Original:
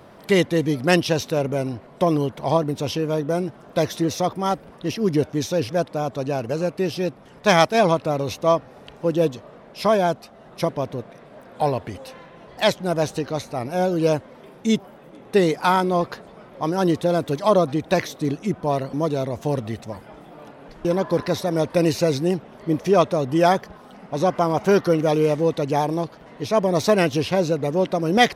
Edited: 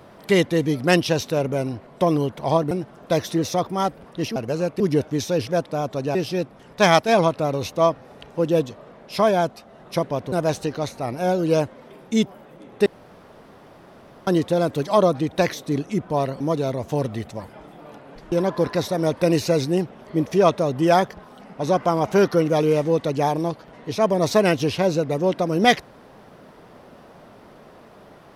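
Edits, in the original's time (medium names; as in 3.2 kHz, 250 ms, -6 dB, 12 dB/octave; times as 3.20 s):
2.71–3.37 s: delete
6.37–6.81 s: move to 5.02 s
10.98–12.85 s: delete
15.39–16.80 s: room tone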